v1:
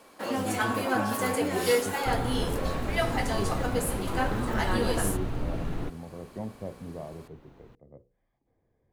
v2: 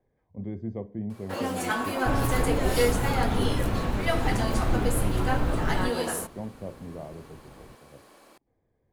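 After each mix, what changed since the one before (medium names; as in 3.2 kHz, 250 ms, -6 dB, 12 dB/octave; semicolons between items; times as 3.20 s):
first sound: entry +1.10 s; second sound +5.0 dB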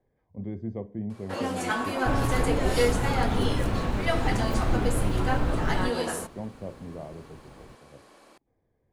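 first sound: add low-pass 9.6 kHz 12 dB/octave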